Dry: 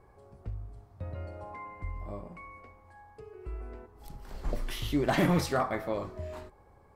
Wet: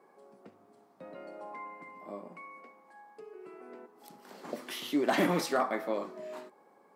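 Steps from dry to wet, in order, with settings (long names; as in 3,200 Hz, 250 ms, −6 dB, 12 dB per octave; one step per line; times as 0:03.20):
Butterworth high-pass 200 Hz 36 dB per octave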